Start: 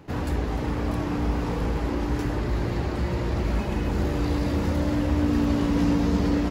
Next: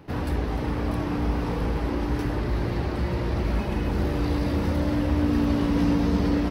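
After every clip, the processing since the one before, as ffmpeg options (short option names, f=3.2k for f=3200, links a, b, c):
-af "equalizer=f=7k:w=6.2:g=-12"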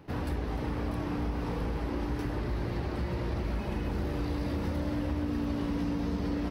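-af "acompressor=threshold=-23dB:ratio=6,volume=-4.5dB"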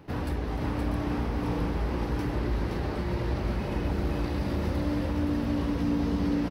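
-af "aecho=1:1:520:0.596,volume=2dB"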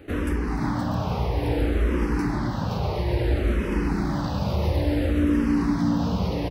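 -filter_complex "[0:a]asplit=2[a][b];[b]afreqshift=-0.59[c];[a][c]amix=inputs=2:normalize=1,volume=8dB"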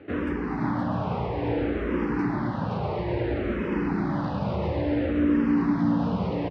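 -af "highpass=120,lowpass=2.5k"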